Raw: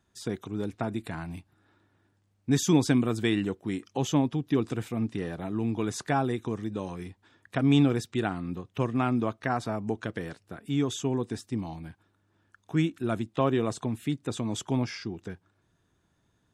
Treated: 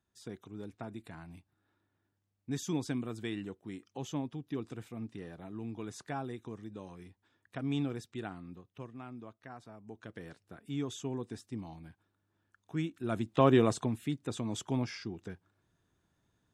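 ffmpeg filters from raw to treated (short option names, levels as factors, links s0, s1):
-af "volume=3.35,afade=t=out:st=8.34:d=0.62:silence=0.398107,afade=t=in:st=9.84:d=0.54:silence=0.281838,afade=t=in:st=12.98:d=0.59:silence=0.266073,afade=t=out:st=13.57:d=0.44:silence=0.421697"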